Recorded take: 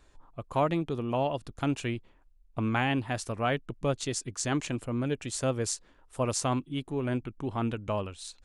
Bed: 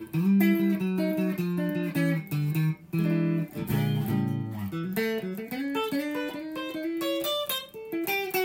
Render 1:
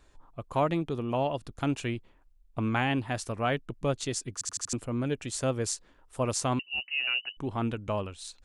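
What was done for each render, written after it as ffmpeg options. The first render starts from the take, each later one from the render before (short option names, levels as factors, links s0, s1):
-filter_complex "[0:a]asettb=1/sr,asplit=3[s0][s1][s2];[s0]atrim=end=6.594[s3];[s1]atrim=start=6.59:end=7.37,asetpts=PTS-STARTPTS,afade=t=in:d=0.004:c=qsin,afade=t=out:st=0.776:d=0.004:c=qsin,lowpass=f=2600:t=q:w=0.5098,lowpass=f=2600:t=q:w=0.6013,lowpass=f=2600:t=q:w=0.9,lowpass=f=2600:t=q:w=2.563,afreqshift=-3000[s4];[s2]atrim=start=7.366[s5];[s3][s4]acrossfade=d=0.004:c1=hsin:c2=qsin[s6];[s6][s5]acrossfade=d=0.004:c1=qsin:c2=hsin,asplit=6[s7][s8][s9][s10][s11][s12];[s7]atrim=end=4.412[s13];[s8]atrim=start=4.328:end=4.412[s14];[s9]atrim=start=4.328:end=4.412[s15];[s10]atrim=start=4.328:end=4.412[s16];[s11]atrim=start=4.328:end=4.412[s17];[s12]atrim=start=4.728[s18];[s13][s14]acrossfade=d=0.004:c1=hsin:c2=hsin[s19];[s19][s15]acrossfade=d=0.004:c1=hsin:c2=hsin[s20];[s20][s16]acrossfade=d=0.004:c1=hsin:c2=hsin[s21];[s21][s17]acrossfade=d=0.004:c1=hsin:c2=hsin[s22];[s22][s18]acrossfade=d=0.004:c1=hsin:c2=hsin"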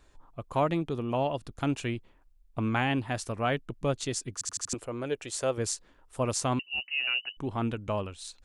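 -filter_complex "[0:a]asettb=1/sr,asplit=3[s0][s1][s2];[s0]atrim=end=4.744[s3];[s1]atrim=start=4.74:end=5.58,asetpts=PTS-STARTPTS,afade=t=in:d=0.004:c=qsin,afade=t=out:st=0.836:d=0.004:c=qsin,lowshelf=f=310:t=q:w=1.5:g=-7.5[s4];[s2]atrim=start=5.576[s5];[s3][s4]acrossfade=d=0.004:c1=hsin:c2=qsin[s6];[s6][s5]acrossfade=d=0.004:c1=qsin:c2=hsin"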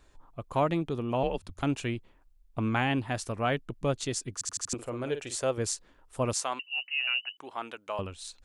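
-filter_complex "[0:a]asettb=1/sr,asplit=3[s0][s1][s2];[s0]atrim=end=1.234[s3];[s1]atrim=start=1.23:end=1.63,asetpts=PTS-STARTPTS,afade=t=in:d=0.004:c=qsin,afade=t=out:st=0.396:d=0.004:c=qsin,afreqshift=-110[s4];[s2]atrim=start=1.626[s5];[s3][s4]acrossfade=d=0.004:c1=hsin:c2=qsin[s6];[s6][s5]acrossfade=d=0.004:c1=qsin:c2=hsin,asettb=1/sr,asplit=3[s7][s8][s9];[s7]atrim=end=4.744[s10];[s8]atrim=start=4.74:end=5.38,asetpts=PTS-STARTPTS,afade=t=in:d=0.004:c=qsin,afade=t=out:st=0.636:d=0.004:c=qsin,asplit=2[s11][s12];[s12]adelay=49,volume=0.335[s13];[s11][s13]amix=inputs=2:normalize=0,atrim=end_sample=28224[s14];[s9]atrim=start=5.376[s15];[s10][s14]acrossfade=d=0.004:c1=hsin:c2=qsin[s16];[s16][s15]acrossfade=d=0.004:c1=qsin:c2=hsin,asettb=1/sr,asplit=3[s17][s18][s19];[s17]atrim=end=6.334[s20];[s18]atrim=start=6.33:end=7.99,asetpts=PTS-STARTPTS,afade=t=in:d=0.004:c=qsin,afade=t=out:st=1.656:d=0.004:c=qsin,highpass=660[s21];[s19]atrim=start=7.986[s22];[s20][s21]acrossfade=d=0.004:c1=hsin:c2=qsin[s23];[s23][s22]acrossfade=d=0.004:c1=qsin:c2=hsin"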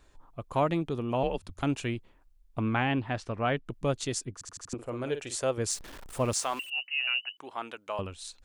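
-filter_complex "[0:a]asettb=1/sr,asplit=3[s0][s1][s2];[s0]atrim=end=2.614[s3];[s1]atrim=start=2.61:end=3.66,asetpts=PTS-STARTPTS,afade=t=in:d=0.004:c=qsin,afade=t=out:st=1.046:d=0.004:c=qsin,lowpass=3700[s4];[s2]atrim=start=3.656[s5];[s3][s4]acrossfade=d=0.004:c1=hsin:c2=qsin[s6];[s6][s5]acrossfade=d=0.004:c1=qsin:c2=hsin,asettb=1/sr,asplit=3[s7][s8][s9];[s7]atrim=end=4.254[s10];[s8]atrim=start=4.25:end=4.89,asetpts=PTS-STARTPTS,afade=t=in:d=0.004:c=qsin,afade=t=out:st=0.636:d=0.004:c=qsin,highshelf=f=2200:g=-11[s11];[s9]atrim=start=4.886[s12];[s10][s11]acrossfade=d=0.004:c1=hsin:c2=qsin[s13];[s13][s12]acrossfade=d=0.004:c1=qsin:c2=hsin,asettb=1/sr,asplit=3[s14][s15][s16];[s14]atrim=end=5.704[s17];[s15]atrim=start=5.7:end=6.7,asetpts=PTS-STARTPTS,afade=t=in:d=0.004:c=qsin,afade=t=out:st=0.996:d=0.004:c=qsin,aeval=exprs='val(0)+0.5*0.00944*sgn(val(0))':c=same[s18];[s16]atrim=start=6.696[s19];[s17][s18]acrossfade=d=0.004:c1=hsin:c2=qsin[s20];[s20][s19]acrossfade=d=0.004:c1=qsin:c2=hsin"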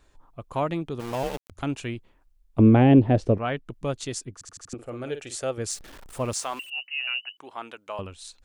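-filter_complex "[0:a]asplit=3[s0][s1][s2];[s0]afade=t=out:st=0.99:d=0.02[s3];[s1]aeval=exprs='val(0)*gte(abs(val(0)),0.0251)':c=same,afade=t=in:st=0.99:d=0.02,afade=t=out:st=1.5:d=0.02[s4];[s2]afade=t=in:st=1.5:d=0.02[s5];[s3][s4][s5]amix=inputs=3:normalize=0,asettb=1/sr,asplit=3[s6][s7][s8];[s6]atrim=end=2.594[s9];[s7]atrim=start=2.59:end=3.38,asetpts=PTS-STARTPTS,afade=t=in:d=0.004:c=qsin,afade=t=out:st=0.786:d=0.004:c=qsin,lowshelf=f=760:t=q:w=1.5:g=13.5[s10];[s8]atrim=start=3.376[s11];[s9][s10]acrossfade=d=0.004:c1=hsin:c2=qsin[s12];[s12][s11]acrossfade=d=0.004:c1=qsin:c2=hsin,asettb=1/sr,asplit=3[s13][s14][s15];[s13]atrim=end=4.414[s16];[s14]atrim=start=4.41:end=5.9,asetpts=PTS-STARTPTS,afade=t=in:d=0.004:c=qsin,afade=t=out:st=1.486:d=0.004:c=qsin,asuperstop=centerf=1000:order=4:qfactor=6.9[s17];[s15]atrim=start=5.896[s18];[s16][s17]acrossfade=d=0.004:c1=hsin:c2=qsin[s19];[s19][s18]acrossfade=d=0.004:c1=qsin:c2=hsin"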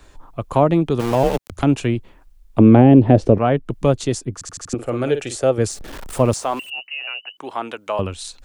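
-filter_complex "[0:a]acrossover=split=150|900[s0][s1][s2];[s0]acompressor=threshold=0.0282:ratio=4[s3];[s1]acompressor=threshold=0.112:ratio=4[s4];[s2]acompressor=threshold=0.00708:ratio=4[s5];[s3][s4][s5]amix=inputs=3:normalize=0,alimiter=level_in=4.47:limit=0.891:release=50:level=0:latency=1"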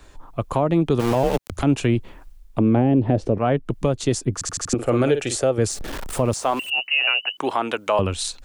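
-af "dynaudnorm=f=120:g=5:m=3.16,alimiter=limit=0.355:level=0:latency=1:release=209"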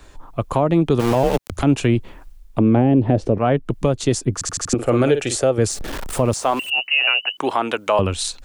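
-af "volume=1.33"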